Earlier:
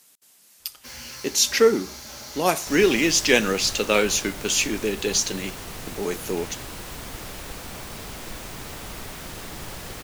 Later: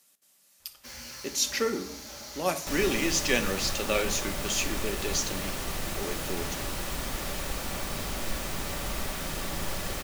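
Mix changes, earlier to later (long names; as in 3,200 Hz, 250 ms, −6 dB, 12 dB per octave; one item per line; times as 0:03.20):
speech −11.0 dB
first sound −5.0 dB
reverb: on, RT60 0.75 s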